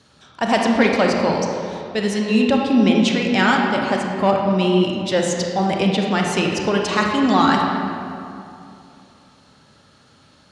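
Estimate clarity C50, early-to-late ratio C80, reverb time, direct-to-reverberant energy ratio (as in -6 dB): 1.0 dB, 2.5 dB, 2.7 s, 0.0 dB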